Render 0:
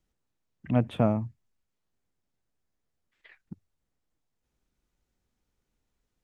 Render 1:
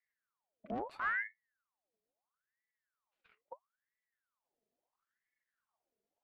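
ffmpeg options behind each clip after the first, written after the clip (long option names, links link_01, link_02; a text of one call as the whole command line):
ffmpeg -i in.wav -af "aeval=exprs='(tanh(35.5*val(0)+0.7)-tanh(0.7))/35.5':channel_layout=same,equalizer=frequency=220:width=4:gain=14.5,aeval=exprs='val(0)*sin(2*PI*1200*n/s+1200*0.65/0.75*sin(2*PI*0.75*n/s))':channel_layout=same,volume=-8dB" out.wav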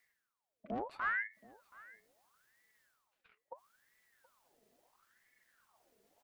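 ffmpeg -i in.wav -af "areverse,acompressor=mode=upward:threshold=-57dB:ratio=2.5,areverse,aecho=1:1:725:0.0841" out.wav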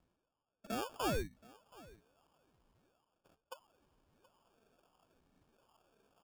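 ffmpeg -i in.wav -af "acrusher=samples=22:mix=1:aa=0.000001" out.wav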